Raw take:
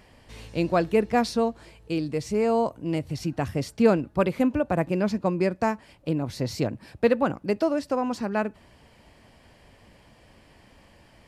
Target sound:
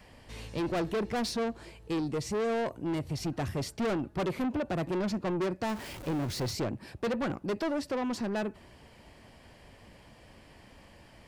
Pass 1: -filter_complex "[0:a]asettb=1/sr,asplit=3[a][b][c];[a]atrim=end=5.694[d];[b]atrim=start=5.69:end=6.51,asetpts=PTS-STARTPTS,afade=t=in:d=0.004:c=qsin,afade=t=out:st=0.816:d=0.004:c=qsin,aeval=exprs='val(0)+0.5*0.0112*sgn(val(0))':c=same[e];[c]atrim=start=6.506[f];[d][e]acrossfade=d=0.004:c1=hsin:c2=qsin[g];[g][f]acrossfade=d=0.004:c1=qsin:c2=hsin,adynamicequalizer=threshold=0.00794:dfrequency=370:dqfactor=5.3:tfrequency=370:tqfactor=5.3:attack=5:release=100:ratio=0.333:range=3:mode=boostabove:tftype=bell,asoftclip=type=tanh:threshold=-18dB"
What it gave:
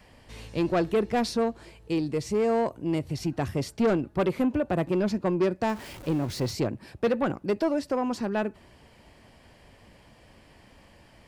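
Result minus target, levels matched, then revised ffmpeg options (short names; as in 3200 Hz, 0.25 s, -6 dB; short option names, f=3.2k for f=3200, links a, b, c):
soft clip: distortion -7 dB
-filter_complex "[0:a]asettb=1/sr,asplit=3[a][b][c];[a]atrim=end=5.694[d];[b]atrim=start=5.69:end=6.51,asetpts=PTS-STARTPTS,afade=t=in:d=0.004:c=qsin,afade=t=out:st=0.816:d=0.004:c=qsin,aeval=exprs='val(0)+0.5*0.0112*sgn(val(0))':c=same[e];[c]atrim=start=6.506[f];[d][e]acrossfade=d=0.004:c1=hsin:c2=qsin[g];[g][f]acrossfade=d=0.004:c1=qsin:c2=hsin,adynamicequalizer=threshold=0.00794:dfrequency=370:dqfactor=5.3:tfrequency=370:tqfactor=5.3:attack=5:release=100:ratio=0.333:range=3:mode=boostabove:tftype=bell,asoftclip=type=tanh:threshold=-27.5dB"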